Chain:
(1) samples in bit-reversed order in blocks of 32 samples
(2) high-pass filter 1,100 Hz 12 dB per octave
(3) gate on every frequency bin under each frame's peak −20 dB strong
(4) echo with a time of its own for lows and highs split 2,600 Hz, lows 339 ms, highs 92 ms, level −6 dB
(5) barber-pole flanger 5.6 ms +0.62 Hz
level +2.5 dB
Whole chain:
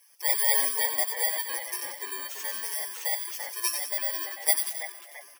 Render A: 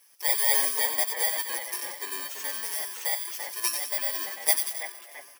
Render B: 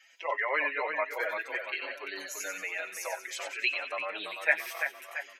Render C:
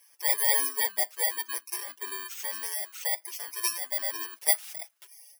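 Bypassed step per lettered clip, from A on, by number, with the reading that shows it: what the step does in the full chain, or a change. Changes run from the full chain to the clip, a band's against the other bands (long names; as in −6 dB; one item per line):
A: 3, 250 Hz band +2.0 dB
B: 1, 8 kHz band −16.5 dB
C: 4, change in integrated loudness −1.0 LU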